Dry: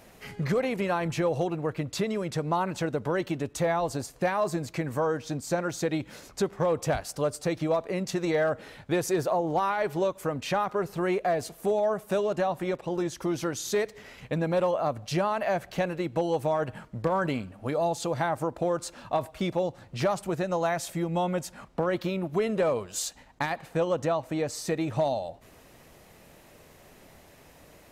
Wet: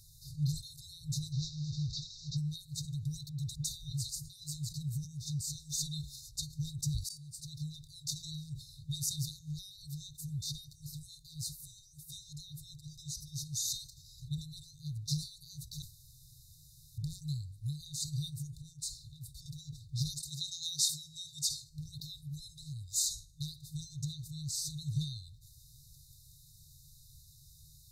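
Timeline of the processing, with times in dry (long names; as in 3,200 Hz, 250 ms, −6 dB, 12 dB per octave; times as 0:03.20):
0:01.32–0:02.37: linear delta modulator 32 kbit/s, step −36.5 dBFS
0:03.29–0:04.30: all-pass dispersion highs, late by 96 ms, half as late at 1,100 Hz
0:05.55–0:06.16: comb filter 4.4 ms, depth 99%
0:07.09–0:07.76: fade in
0:15.82–0:16.98: fill with room tone
0:18.59–0:19.46: downward compressor, threshold −33 dBFS
0:20.20–0:21.70: meter weighting curve D
whole clip: hum removal 353.5 Hz, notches 37; brick-wall band-stop 160–3,600 Hz; level that may fall only so fast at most 140 dB per second; level +1 dB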